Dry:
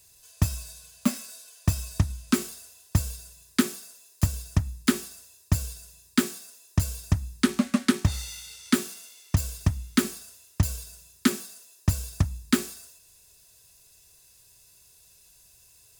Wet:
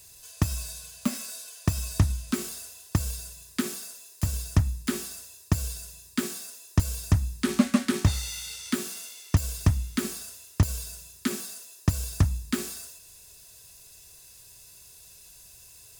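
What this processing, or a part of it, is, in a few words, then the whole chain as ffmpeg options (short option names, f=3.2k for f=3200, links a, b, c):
de-esser from a sidechain: -filter_complex "[0:a]asplit=2[a][b];[b]highpass=5.1k,apad=whole_len=705373[c];[a][c]sidechaincompress=threshold=-39dB:ratio=5:attack=0.91:release=33,volume=6dB"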